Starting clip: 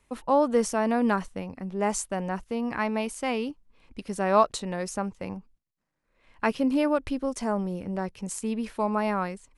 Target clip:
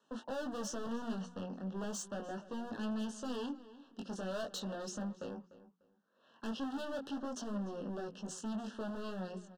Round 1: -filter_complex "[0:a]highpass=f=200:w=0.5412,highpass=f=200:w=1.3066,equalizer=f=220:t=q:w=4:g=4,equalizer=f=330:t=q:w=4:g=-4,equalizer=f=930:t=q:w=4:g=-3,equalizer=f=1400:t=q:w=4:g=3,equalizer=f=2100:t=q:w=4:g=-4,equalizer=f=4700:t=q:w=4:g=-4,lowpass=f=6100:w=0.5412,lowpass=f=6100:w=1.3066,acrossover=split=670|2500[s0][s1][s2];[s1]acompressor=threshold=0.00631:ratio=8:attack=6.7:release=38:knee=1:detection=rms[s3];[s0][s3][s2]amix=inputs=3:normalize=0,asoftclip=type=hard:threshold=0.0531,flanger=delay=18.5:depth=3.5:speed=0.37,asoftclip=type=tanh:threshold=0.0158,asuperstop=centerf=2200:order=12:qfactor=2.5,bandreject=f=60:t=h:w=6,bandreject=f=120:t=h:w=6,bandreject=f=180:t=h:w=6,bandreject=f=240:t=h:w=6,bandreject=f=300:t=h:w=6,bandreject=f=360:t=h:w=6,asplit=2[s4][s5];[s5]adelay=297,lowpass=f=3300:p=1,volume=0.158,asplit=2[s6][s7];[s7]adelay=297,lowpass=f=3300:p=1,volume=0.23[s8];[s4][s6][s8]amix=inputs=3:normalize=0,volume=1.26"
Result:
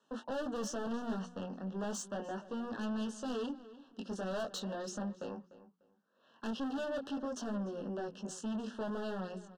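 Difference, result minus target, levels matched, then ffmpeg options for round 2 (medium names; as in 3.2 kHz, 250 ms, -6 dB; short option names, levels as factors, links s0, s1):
compression: peak gain reduction -7 dB; hard clipper: distortion -5 dB
-filter_complex "[0:a]highpass=f=200:w=0.5412,highpass=f=200:w=1.3066,equalizer=f=220:t=q:w=4:g=4,equalizer=f=330:t=q:w=4:g=-4,equalizer=f=930:t=q:w=4:g=-3,equalizer=f=1400:t=q:w=4:g=3,equalizer=f=2100:t=q:w=4:g=-4,equalizer=f=4700:t=q:w=4:g=-4,lowpass=f=6100:w=0.5412,lowpass=f=6100:w=1.3066,acrossover=split=670|2500[s0][s1][s2];[s1]acompressor=threshold=0.00251:ratio=8:attack=6.7:release=38:knee=1:detection=rms[s3];[s0][s3][s2]amix=inputs=3:normalize=0,asoftclip=type=hard:threshold=0.0237,flanger=delay=18.5:depth=3.5:speed=0.37,asoftclip=type=tanh:threshold=0.0158,asuperstop=centerf=2200:order=12:qfactor=2.5,bandreject=f=60:t=h:w=6,bandreject=f=120:t=h:w=6,bandreject=f=180:t=h:w=6,bandreject=f=240:t=h:w=6,bandreject=f=300:t=h:w=6,bandreject=f=360:t=h:w=6,asplit=2[s4][s5];[s5]adelay=297,lowpass=f=3300:p=1,volume=0.158,asplit=2[s6][s7];[s7]adelay=297,lowpass=f=3300:p=1,volume=0.23[s8];[s4][s6][s8]amix=inputs=3:normalize=0,volume=1.26"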